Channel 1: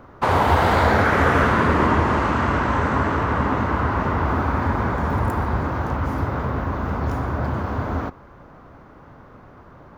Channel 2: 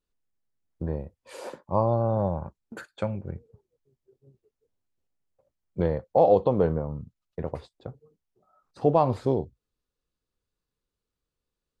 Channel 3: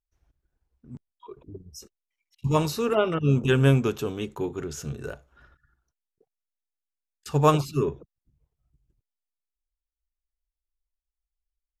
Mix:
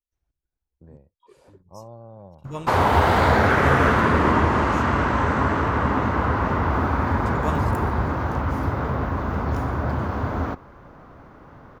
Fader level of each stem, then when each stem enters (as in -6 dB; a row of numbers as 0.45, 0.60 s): -0.5, -18.0, -10.5 dB; 2.45, 0.00, 0.00 s